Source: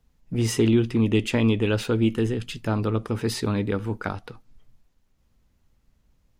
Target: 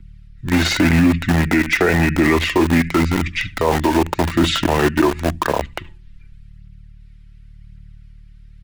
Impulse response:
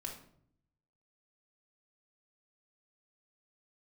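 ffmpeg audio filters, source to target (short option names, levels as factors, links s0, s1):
-filter_complex "[0:a]aeval=exprs='val(0)+0.00562*(sin(2*PI*50*n/s)+sin(2*PI*2*50*n/s)/2+sin(2*PI*3*50*n/s)/3+sin(2*PI*4*50*n/s)/4+sin(2*PI*5*50*n/s)/5)':c=same,asetrate=32667,aresample=44100,acrossover=split=340 2100:gain=0.141 1 0.0891[s0][s1][s2];[s0][s1][s2]amix=inputs=3:normalize=0,asplit=2[s3][s4];[s4]adelay=72,lowpass=f=1500:p=1,volume=0.188,asplit=2[s5][s6];[s6]adelay=72,lowpass=f=1500:p=1,volume=0.24,asplit=2[s7][s8];[s8]adelay=72,lowpass=f=1500:p=1,volume=0.24[s9];[s5][s7][s9]amix=inputs=3:normalize=0[s10];[s3][s10]amix=inputs=2:normalize=0,aphaser=in_gain=1:out_gain=1:delay=3.4:decay=0.37:speed=0.9:type=triangular,equalizer=f=4500:w=0.92:g=4,bandreject=f=1100:w=11,acrossover=split=250|1900[s11][s12][s13];[s12]aeval=exprs='val(0)*gte(abs(val(0)),0.0158)':c=same[s14];[s13]aecho=1:1:5.9:0.95[s15];[s11][s14][s15]amix=inputs=3:normalize=0,alimiter=level_in=17.8:limit=0.891:release=50:level=0:latency=1,volume=0.562"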